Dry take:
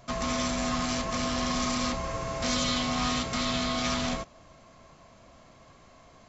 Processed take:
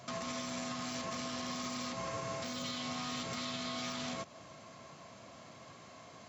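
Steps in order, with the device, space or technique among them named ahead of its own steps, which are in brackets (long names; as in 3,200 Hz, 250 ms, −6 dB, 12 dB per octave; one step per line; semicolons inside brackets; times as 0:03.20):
broadcast voice chain (high-pass filter 100 Hz 24 dB per octave; de-essing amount 75%; downward compressor, threshold −36 dBFS, peak gain reduction 10 dB; parametric band 5,200 Hz +3 dB 2.8 octaves; brickwall limiter −31.5 dBFS, peak gain reduction 6.5 dB)
level +1 dB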